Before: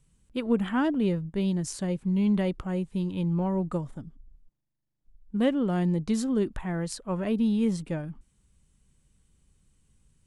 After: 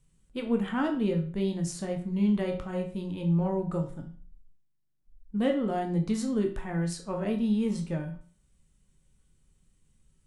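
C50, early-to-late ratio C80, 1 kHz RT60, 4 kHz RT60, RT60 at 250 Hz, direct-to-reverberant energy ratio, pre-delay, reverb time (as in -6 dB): 9.0 dB, 13.5 dB, 0.40 s, 0.35 s, 0.45 s, 2.0 dB, 10 ms, 0.45 s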